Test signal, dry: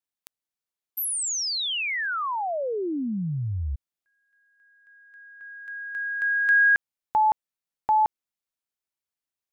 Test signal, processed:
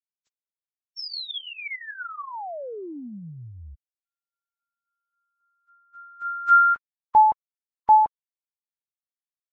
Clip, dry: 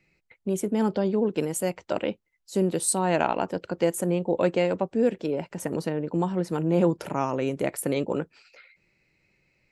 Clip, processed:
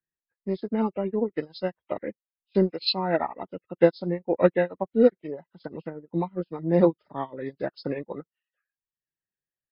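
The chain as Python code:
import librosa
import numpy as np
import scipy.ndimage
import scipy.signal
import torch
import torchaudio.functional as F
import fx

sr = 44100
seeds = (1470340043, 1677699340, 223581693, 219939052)

y = fx.freq_compress(x, sr, knee_hz=1000.0, ratio=1.5)
y = fx.dereverb_blind(y, sr, rt60_s=0.94)
y = fx.upward_expand(y, sr, threshold_db=-43.0, expansion=2.5)
y = y * librosa.db_to_amplitude(7.5)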